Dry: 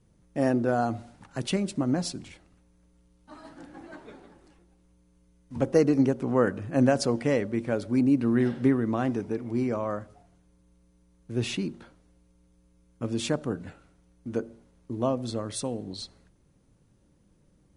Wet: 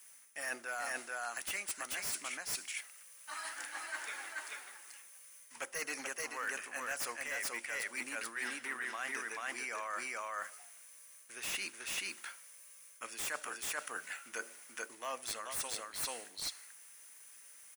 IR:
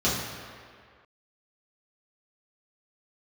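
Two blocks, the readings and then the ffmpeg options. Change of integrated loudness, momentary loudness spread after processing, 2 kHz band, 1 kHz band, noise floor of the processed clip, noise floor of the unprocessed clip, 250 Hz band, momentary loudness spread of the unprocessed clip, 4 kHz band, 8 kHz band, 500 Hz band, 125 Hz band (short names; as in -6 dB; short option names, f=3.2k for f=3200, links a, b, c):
-12.0 dB, 15 LU, +2.5 dB, -7.0 dB, -57 dBFS, -64 dBFS, -30.0 dB, 19 LU, -3.0 dB, +3.0 dB, -20.0 dB, under -30 dB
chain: -filter_complex "[0:a]aecho=1:1:435:0.668,asplit=2[a][b];[b]volume=17dB,asoftclip=hard,volume=-17dB,volume=-5dB[c];[a][c]amix=inputs=2:normalize=0,highshelf=f=3.9k:g=7,crystalizer=i=7.5:c=0,highpass=1.3k,asoftclip=type=tanh:threshold=-16.5dB,equalizer=f=2k:t=o:w=1:g=5,equalizer=f=4k:t=o:w=1:g=-11,equalizer=f=8k:t=o:w=1:g=-8,areverse,acompressor=threshold=-39dB:ratio=6,areverse,volume=1.5dB"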